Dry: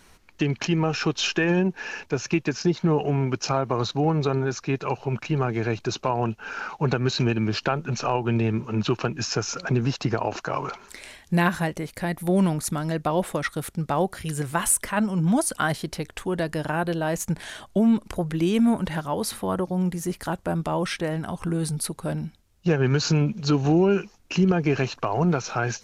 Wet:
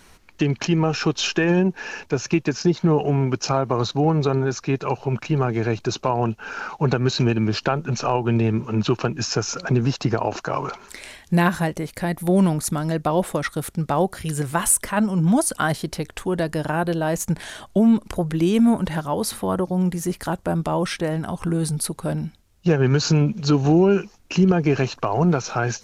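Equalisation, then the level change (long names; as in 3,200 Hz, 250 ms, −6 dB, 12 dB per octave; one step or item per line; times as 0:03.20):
dynamic equaliser 2,300 Hz, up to −3 dB, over −40 dBFS, Q 0.82
+3.5 dB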